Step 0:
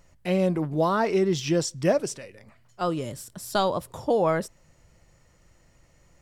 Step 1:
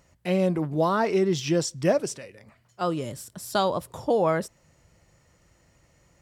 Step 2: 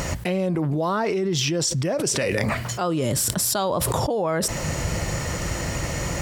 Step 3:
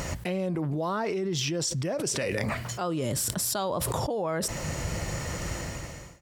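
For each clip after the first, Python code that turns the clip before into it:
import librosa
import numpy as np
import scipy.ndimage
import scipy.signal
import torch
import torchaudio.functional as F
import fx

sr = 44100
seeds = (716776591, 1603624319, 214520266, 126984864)

y1 = scipy.signal.sosfilt(scipy.signal.butter(2, 51.0, 'highpass', fs=sr, output='sos'), x)
y2 = fx.env_flatten(y1, sr, amount_pct=100)
y2 = y2 * 10.0 ** (-5.5 / 20.0)
y3 = fx.fade_out_tail(y2, sr, length_s=0.68)
y3 = y3 * 10.0 ** (-6.0 / 20.0)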